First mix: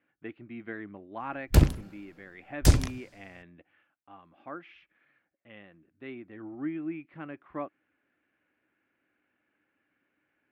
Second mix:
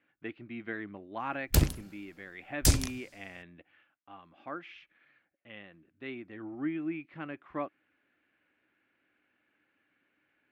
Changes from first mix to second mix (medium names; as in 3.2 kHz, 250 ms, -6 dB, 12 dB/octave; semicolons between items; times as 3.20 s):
background -5.5 dB; master: add treble shelf 3.4 kHz +12 dB